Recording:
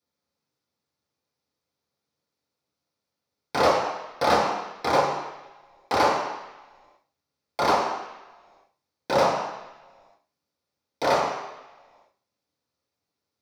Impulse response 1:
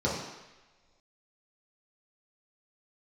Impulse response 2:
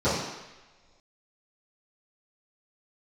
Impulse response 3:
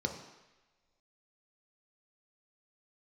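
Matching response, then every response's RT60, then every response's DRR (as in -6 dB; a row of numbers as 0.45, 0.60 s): 1; not exponential, not exponential, not exponential; -7.0, -16.5, 3.0 dB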